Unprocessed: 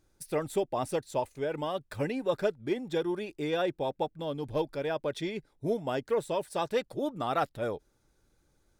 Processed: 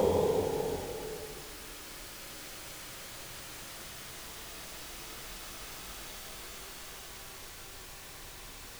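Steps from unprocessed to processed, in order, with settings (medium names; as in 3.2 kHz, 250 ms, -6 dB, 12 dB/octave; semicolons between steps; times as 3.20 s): crackle 330 per s -44 dBFS; Paulstretch 19×, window 0.25 s, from 7.79 s; trim +16 dB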